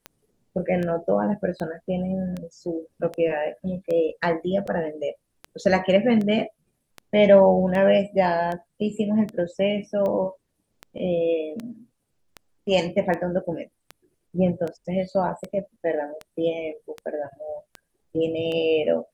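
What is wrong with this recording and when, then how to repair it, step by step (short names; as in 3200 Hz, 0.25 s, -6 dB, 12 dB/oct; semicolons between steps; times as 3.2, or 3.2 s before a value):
tick 78 rpm -19 dBFS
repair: de-click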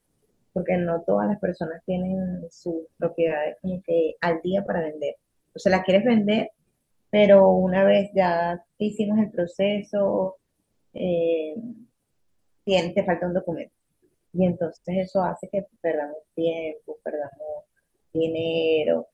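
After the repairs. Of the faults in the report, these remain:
none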